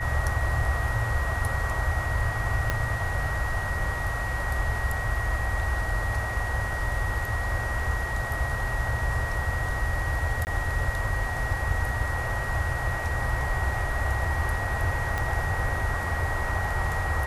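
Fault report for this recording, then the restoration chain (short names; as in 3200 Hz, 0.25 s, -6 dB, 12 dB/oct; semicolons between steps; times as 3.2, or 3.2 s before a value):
tone 1900 Hz -32 dBFS
2.7 pop -11 dBFS
10.45–10.47 gap 19 ms
15.18 pop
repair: de-click; notch 1900 Hz, Q 30; interpolate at 10.45, 19 ms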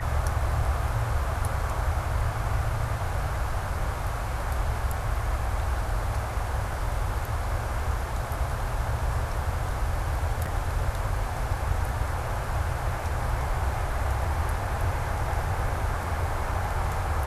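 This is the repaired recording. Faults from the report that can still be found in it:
2.7 pop
15.18 pop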